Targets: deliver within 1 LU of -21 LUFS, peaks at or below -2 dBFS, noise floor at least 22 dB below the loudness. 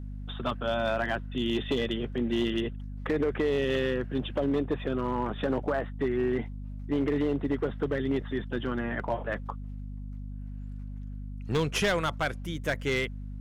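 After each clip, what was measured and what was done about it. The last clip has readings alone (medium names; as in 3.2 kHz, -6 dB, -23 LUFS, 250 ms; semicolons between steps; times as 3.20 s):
clipped samples 1.3%; clipping level -21.0 dBFS; hum 50 Hz; highest harmonic 250 Hz; hum level -36 dBFS; loudness -30.0 LUFS; peak level -21.0 dBFS; loudness target -21.0 LUFS
-> clip repair -21 dBFS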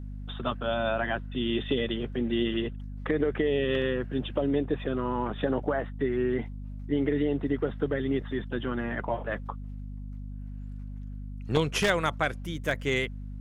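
clipped samples 0.0%; hum 50 Hz; highest harmonic 250 Hz; hum level -36 dBFS
-> de-hum 50 Hz, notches 5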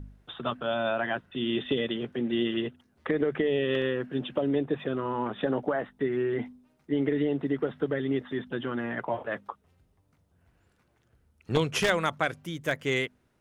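hum not found; loudness -29.5 LUFS; peak level -11.0 dBFS; loudness target -21.0 LUFS
-> trim +8.5 dB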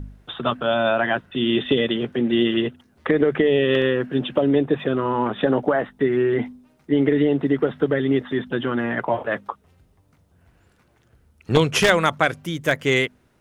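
loudness -21.0 LUFS; peak level -2.5 dBFS; noise floor -61 dBFS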